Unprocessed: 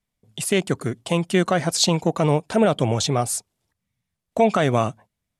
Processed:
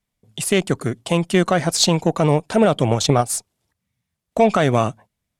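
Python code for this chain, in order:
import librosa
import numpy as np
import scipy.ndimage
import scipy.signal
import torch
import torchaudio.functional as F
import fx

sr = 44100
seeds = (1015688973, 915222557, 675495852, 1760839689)

y = fx.cheby_harmonics(x, sr, harmonics=(6,), levels_db=(-32,), full_scale_db=-6.5)
y = fx.transient(y, sr, attack_db=11, sustain_db=-8, at=(2.9, 3.31))
y = y * librosa.db_to_amplitude(2.5)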